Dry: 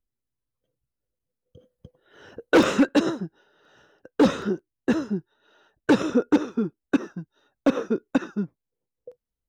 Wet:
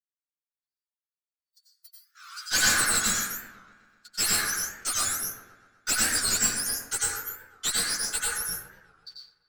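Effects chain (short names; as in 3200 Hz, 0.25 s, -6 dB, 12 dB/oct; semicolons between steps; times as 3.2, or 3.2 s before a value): spectrum mirrored in octaves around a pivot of 1500 Hz; steep high-pass 1100 Hz 72 dB/oct; gate -56 dBFS, range -21 dB; in parallel at -1 dB: compressor, threshold -41 dBFS, peak gain reduction 21 dB; on the sum: one-sided clip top -29.5 dBFS; dark delay 0.125 s, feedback 61%, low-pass 2100 Hz, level -12.5 dB; plate-style reverb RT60 0.77 s, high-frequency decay 0.45×, pre-delay 80 ms, DRR -4.5 dB; record warp 45 rpm, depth 160 cents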